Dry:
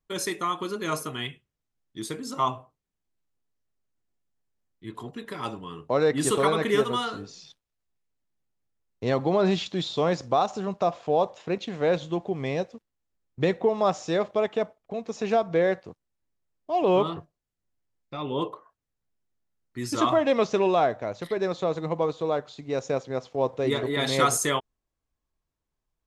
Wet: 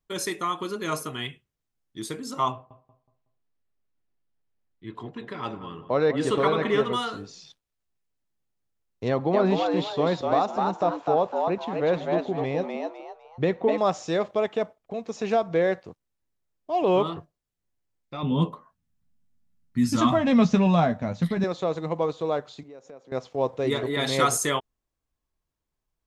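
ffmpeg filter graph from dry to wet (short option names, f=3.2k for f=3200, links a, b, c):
-filter_complex "[0:a]asettb=1/sr,asplit=3[a][b][c];[a]atrim=end=2.524[d];[b]atrim=start=2.52:end=6.93,asetpts=PTS-STARTPTS,afade=t=in:d=0.004:c=qsin,afade=t=out:st=4.406:d=0.004:c=qsin,lowpass=4k,asplit=2[e][f];[f]adelay=185,lowpass=f=1.5k:p=1,volume=-11dB,asplit=2[g][h];[h]adelay=185,lowpass=f=1.5k:p=1,volume=0.36,asplit=2[i][j];[j]adelay=185,lowpass=f=1.5k:p=1,volume=0.36,asplit=2[k][l];[l]adelay=185,lowpass=f=1.5k:p=1,volume=0.36[m];[e][g][i][k][m]amix=inputs=5:normalize=0,atrim=end_sample=194481[n];[c]atrim=start=6.926[o];[d][n]acrossfade=d=0.004:c1=hsin:c2=qsin[p];[p][o]acrossfade=d=0.004:c1=qsin:c2=hsin,asettb=1/sr,asplit=3[q][r][s];[q]atrim=end=9.084[t];[r]atrim=start=9.08:end=13.78,asetpts=PTS-STARTPTS,afade=t=in:d=0.004:c=qsin,afade=t=out:st=4.696:d=0.004:c=qsin,lowpass=f=2.5k:p=1,asplit=5[u][v][w][x][y];[v]adelay=252,afreqshift=110,volume=-3.5dB[z];[w]adelay=504,afreqshift=220,volume=-13.7dB[aa];[x]adelay=756,afreqshift=330,volume=-23.8dB[ab];[y]adelay=1008,afreqshift=440,volume=-34dB[ac];[u][z][aa][ab][ac]amix=inputs=5:normalize=0,atrim=end_sample=207270[ad];[s]atrim=start=13.776[ae];[t][ad]acrossfade=d=0.004:c1=hsin:c2=qsin[af];[af][ae]acrossfade=d=0.004:c1=qsin:c2=hsin,asettb=1/sr,asplit=3[ag][ah][ai];[ag]atrim=end=18.234[aj];[ah]atrim=start=18.23:end=21.44,asetpts=PTS-STARTPTS,afade=t=in:d=0.004:c=qsin,afade=t=out:st=3.206:d=0.004:c=qsin,lowshelf=f=280:t=q:w=3:g=9,asplit=2[ak][al];[al]adelay=12,volume=-7dB[am];[ak][am]amix=inputs=2:normalize=0,atrim=end_sample=141561[an];[ai]atrim=start=21.436[ao];[aj][an]acrossfade=d=0.004:c1=hsin:c2=qsin[ap];[ap][ao]acrossfade=d=0.004:c1=qsin:c2=hsin,asettb=1/sr,asplit=3[aq][ar][as];[aq]atrim=end=22.634[at];[ar]atrim=start=22.63:end=23.12,asetpts=PTS-STARTPTS,afade=t=in:d=0.004:c=qsin,afade=t=out:st=0.486:d=0.004:c=qsin,highpass=210,equalizer=f=5.1k:w=0.39:g=-8,acompressor=threshold=-47dB:ratio=3:attack=3.2:release=140:knee=1:detection=peak[au];[as]atrim=start=23.116[av];[at][au]acrossfade=d=0.004:c1=hsin:c2=qsin[aw];[aw][av]acrossfade=d=0.004:c1=qsin:c2=hsin"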